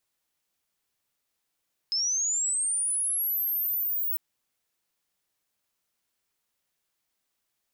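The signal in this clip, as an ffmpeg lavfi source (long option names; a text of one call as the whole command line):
ffmpeg -f lavfi -i "aevalsrc='pow(10,(-24-1.5*t/2.25)/20)*sin(2*PI*(5100*t+10900*t*t/(2*2.25)))':duration=2.25:sample_rate=44100" out.wav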